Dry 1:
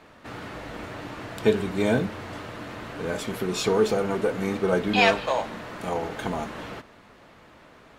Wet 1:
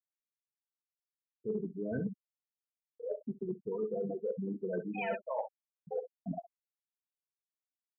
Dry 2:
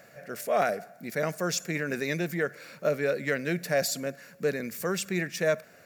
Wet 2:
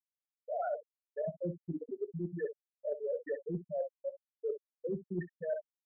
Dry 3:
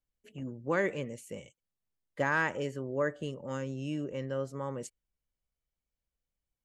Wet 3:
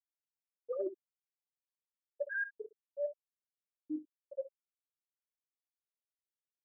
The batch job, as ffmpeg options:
ffmpeg -i in.wav -af "acontrast=50,afftfilt=real='re*gte(hypot(re,im),0.501)':imag='im*gte(hypot(re,im),0.501)':win_size=1024:overlap=0.75,aecho=1:1:19|65:0.188|0.141,areverse,acompressor=threshold=-29dB:ratio=16,areverse,volume=-3.5dB" out.wav

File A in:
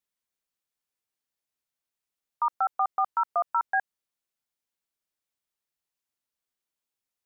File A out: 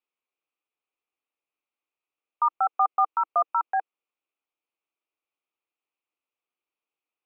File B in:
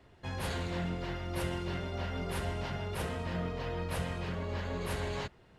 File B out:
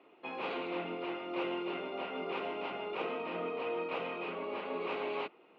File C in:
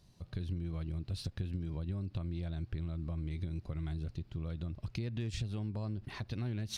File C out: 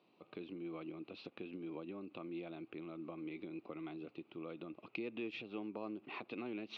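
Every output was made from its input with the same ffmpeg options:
ffmpeg -i in.wav -af "highpass=frequency=250:width=0.5412,highpass=frequency=250:width=1.3066,equalizer=frequency=320:width_type=q:width=4:gain=6,equalizer=frequency=460:width_type=q:width=4:gain=5,equalizer=frequency=790:width_type=q:width=4:gain=4,equalizer=frequency=1200:width_type=q:width=4:gain=7,equalizer=frequency=1700:width_type=q:width=4:gain=-10,equalizer=frequency=2500:width_type=q:width=4:gain=10,lowpass=frequency=3200:width=0.5412,lowpass=frequency=3200:width=1.3066,volume=-1.5dB" out.wav

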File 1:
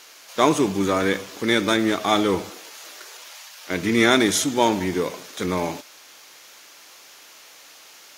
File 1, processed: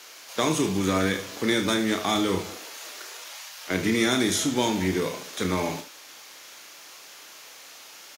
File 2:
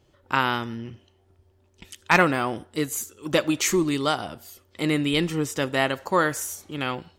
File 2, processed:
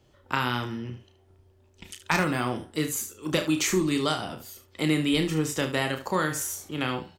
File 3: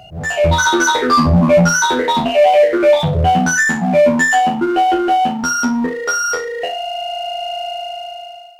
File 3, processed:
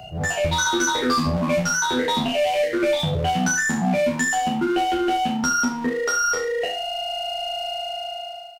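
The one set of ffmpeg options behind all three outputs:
ffmpeg -i in.wav -filter_complex "[0:a]acrossover=split=250|1700|4100[link_01][link_02][link_03][link_04];[link_01]acompressor=threshold=-26dB:ratio=4[link_05];[link_02]acompressor=threshold=-27dB:ratio=4[link_06];[link_03]acompressor=threshold=-32dB:ratio=4[link_07];[link_04]acompressor=threshold=-28dB:ratio=4[link_08];[link_05][link_06][link_07][link_08]amix=inputs=4:normalize=0,aecho=1:1:32|74:0.422|0.266" out.wav

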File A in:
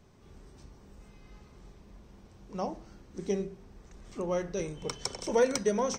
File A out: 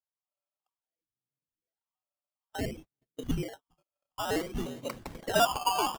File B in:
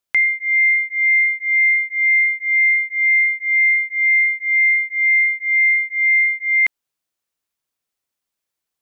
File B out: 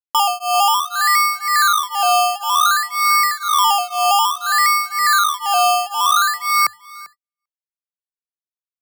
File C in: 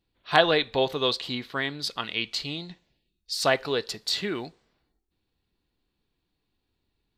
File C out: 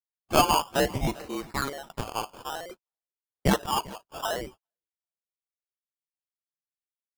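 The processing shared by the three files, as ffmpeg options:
ffmpeg -i in.wav -filter_complex "[0:a]lowpass=frequency=2800:width_type=q:width=0.5098,lowpass=frequency=2800:width_type=q:width=0.6013,lowpass=frequency=2800:width_type=q:width=0.9,lowpass=frequency=2800:width_type=q:width=2.563,afreqshift=-3300,acrusher=samples=18:mix=1:aa=0.000001:lfo=1:lforange=10.8:lforate=0.57,asplit=2[link_01][link_02];[link_02]aecho=0:1:395|790:0.0891|0.0214[link_03];[link_01][link_03]amix=inputs=2:normalize=0,agate=range=-49dB:threshold=-43dB:ratio=16:detection=peak" out.wav

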